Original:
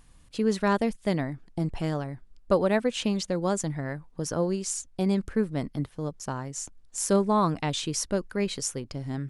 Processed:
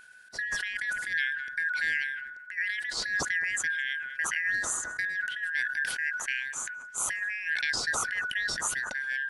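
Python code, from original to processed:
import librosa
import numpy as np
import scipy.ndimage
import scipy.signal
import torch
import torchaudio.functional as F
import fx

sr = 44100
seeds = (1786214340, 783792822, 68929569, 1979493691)

p1 = fx.band_shuffle(x, sr, order='4123')
p2 = fx.over_compress(p1, sr, threshold_db=-27.0, ratio=-0.5)
p3 = p2 + fx.echo_filtered(p2, sr, ms=210, feedback_pct=46, hz=1100.0, wet_db=-17.5, dry=0)
p4 = fx.sustainer(p3, sr, db_per_s=40.0)
y = p4 * librosa.db_to_amplitude(-2.5)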